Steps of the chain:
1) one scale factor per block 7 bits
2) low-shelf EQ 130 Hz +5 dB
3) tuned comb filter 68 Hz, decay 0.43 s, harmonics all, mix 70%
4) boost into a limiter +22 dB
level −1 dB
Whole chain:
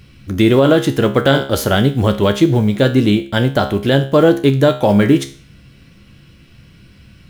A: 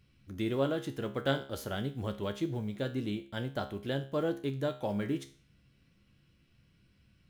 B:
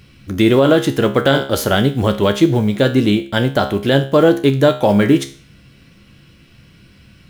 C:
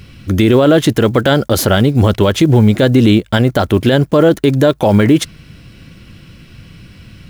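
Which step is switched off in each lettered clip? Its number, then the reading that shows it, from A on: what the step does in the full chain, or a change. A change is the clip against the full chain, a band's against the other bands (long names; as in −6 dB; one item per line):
4, change in crest factor +6.0 dB
2, 125 Hz band −2.5 dB
3, 8 kHz band +4.0 dB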